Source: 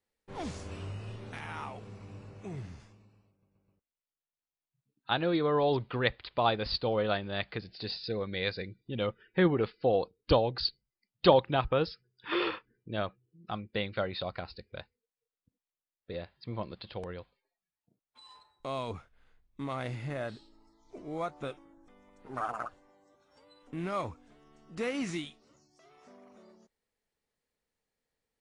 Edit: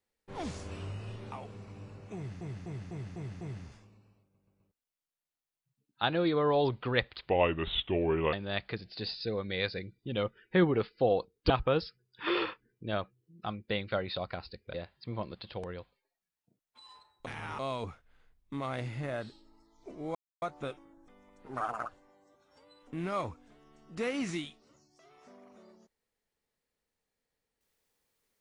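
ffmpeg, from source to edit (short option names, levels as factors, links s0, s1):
-filter_complex "[0:a]asplit=14[s0][s1][s2][s3][s4][s5][s6][s7][s8][s9][s10][s11][s12][s13];[s0]atrim=end=1.322[s14];[s1]atrim=start=1.648:end=2.742[s15];[s2]atrim=start=2.488:end=2.742[s16];[s3]atrim=start=2.488:end=2.742[s17];[s4]atrim=start=2.488:end=2.742[s18];[s5]atrim=start=2.488:end=2.742[s19];[s6]atrim=start=2.488:end=6.374[s20];[s7]atrim=start=6.37:end=7.16,asetpts=PTS-STARTPTS,asetrate=33516,aresample=44100[s21];[s8]atrim=start=7.156:end=10.332[s22];[s9]atrim=start=11.548:end=14.792[s23];[s10]atrim=start=16.138:end=18.662[s24];[s11]atrim=start=1.318:end=1.652[s25];[s12]atrim=start=18.658:end=21.22,asetpts=PTS-STARTPTS,afade=t=out:st=2.558:d=0.004:c=hsin,apad=pad_dur=0.27[s26];[s13]atrim=start=21.22,asetpts=PTS-STARTPTS,afade=t=in:d=0.004:c=hsin[s27];[s14][s15]acrossfade=d=0.004:c1=hsin:c2=hsin[s28];[s28][s16]acrossfade=d=0.004:c1=hsin:c2=hsin[s29];[s29][s17]acrossfade=d=0.004:c1=hsin:c2=hsin[s30];[s30][s18]acrossfade=d=0.004:c1=hsin:c2=hsin[s31];[s31][s19]acrossfade=d=0.004:c1=hsin:c2=hsin[s32];[s32][s20]acrossfade=d=0.004:c1=hsin:c2=hsin[s33];[s33][s21]acrossfade=d=0.004:c1=hsin:c2=hsin[s34];[s34][s22]acrossfade=d=0.004:c1=hsin:c2=hsin[s35];[s35][s23]acrossfade=d=0.004:c1=hsin:c2=hsin[s36];[s36][s24]acrossfade=d=0.004:c1=hsin:c2=hsin[s37];[s37][s25]acrossfade=d=0.004:c1=hsin:c2=hsin[s38];[s26][s27]concat=n=2:v=0:a=1[s39];[s38][s39]acrossfade=d=0.004:c1=hsin:c2=hsin"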